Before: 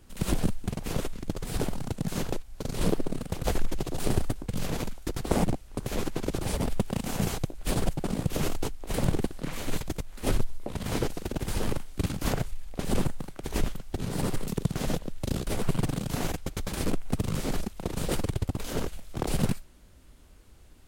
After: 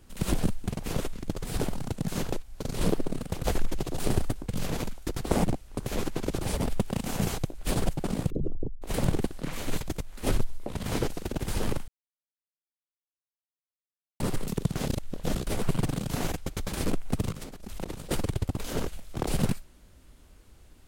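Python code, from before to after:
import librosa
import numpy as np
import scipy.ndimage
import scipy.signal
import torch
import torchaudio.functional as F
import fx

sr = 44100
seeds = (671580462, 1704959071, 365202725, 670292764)

y = fx.envelope_sharpen(x, sr, power=3.0, at=(8.3, 8.82))
y = fx.over_compress(y, sr, threshold_db=-39.0, ratio=-1.0, at=(17.32, 18.11))
y = fx.edit(y, sr, fx.silence(start_s=11.88, length_s=2.32),
    fx.reverse_span(start_s=14.87, length_s=0.48), tone=tone)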